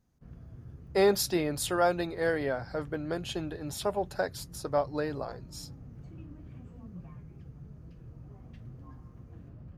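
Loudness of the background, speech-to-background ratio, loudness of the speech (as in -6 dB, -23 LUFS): -48.5 LUFS, 18.0 dB, -30.5 LUFS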